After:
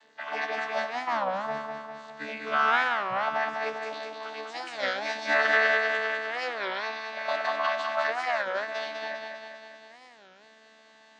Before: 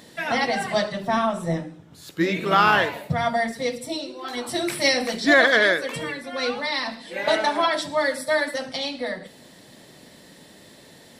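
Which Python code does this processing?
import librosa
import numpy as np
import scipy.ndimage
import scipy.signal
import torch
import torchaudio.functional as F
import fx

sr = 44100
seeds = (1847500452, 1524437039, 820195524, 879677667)

p1 = fx.chord_vocoder(x, sr, chord='bare fifth', root=50)
p2 = scipy.signal.sosfilt(scipy.signal.butter(2, 1000.0, 'highpass', fs=sr, output='sos'), p1)
p3 = fx.high_shelf(p2, sr, hz=3600.0, db=-8.0)
p4 = p3 + fx.echo_feedback(p3, sr, ms=200, feedback_pct=58, wet_db=-5.5, dry=0)
y = fx.record_warp(p4, sr, rpm=33.33, depth_cents=250.0)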